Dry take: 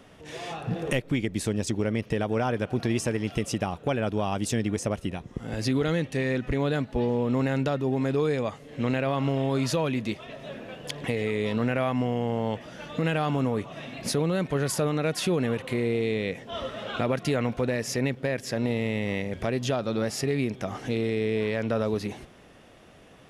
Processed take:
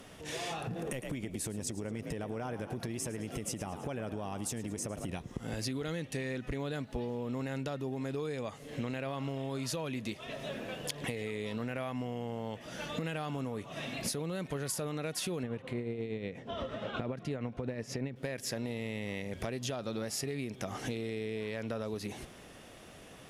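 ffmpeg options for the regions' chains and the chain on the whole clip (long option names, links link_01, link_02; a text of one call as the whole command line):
ffmpeg -i in.wav -filter_complex "[0:a]asettb=1/sr,asplit=3[link_01][link_02][link_03];[link_01]atrim=end=0.674[link_04];[link_02]atrim=start=0.67:end=5.09,asetpts=PTS-STARTPTS,afade=type=in:duration=0.004:curve=qsin,afade=type=out:start_time=4.416:duration=0.004:curve=qsin,equalizer=frequency=3800:width_type=o:width=1.7:gain=-5.5,asplit=6[link_05][link_06][link_07][link_08][link_09][link_10];[link_06]adelay=107,afreqshift=43,volume=-14dB[link_11];[link_07]adelay=214,afreqshift=86,volume=-20.4dB[link_12];[link_08]adelay=321,afreqshift=129,volume=-26.8dB[link_13];[link_09]adelay=428,afreqshift=172,volume=-33.1dB[link_14];[link_10]adelay=535,afreqshift=215,volume=-39.5dB[link_15];[link_05][link_11][link_12][link_13][link_14][link_15]amix=inputs=6:normalize=0,atrim=end_sample=194922,acompressor=threshold=-32dB:ratio=3:attack=3.2:release=140:knee=1:detection=peak[link_16];[link_03]atrim=start=5.086[link_17];[link_04][link_16]acrossfade=duration=0.004:curve1=hsin:curve2=qsin[link_18];[link_18][link_17]acrossfade=duration=0.004:curve1=qsin:curve2=hsin,asettb=1/sr,asplit=3[link_19][link_20][link_21];[link_19]atrim=end=15.434[link_22];[link_20]atrim=start=15.43:end=18.16,asetpts=PTS-STARTPTS,afade=type=in:duration=0.004:curve=qsin,afade=type=out:start_time=2.726:duration=0.004:curve=qsin,aemphasis=mode=reproduction:type=riaa,tremolo=f=8.4:d=0.51,highpass=frequency=260:poles=1[link_23];[link_21]atrim=start=18.156[link_24];[link_22][link_23]acrossfade=duration=0.004:curve1=hsin:curve2=qsin[link_25];[link_25][link_24]acrossfade=duration=0.004:curve1=qsin:curve2=hsin,aemphasis=mode=production:type=cd,acompressor=threshold=-34dB:ratio=6" out.wav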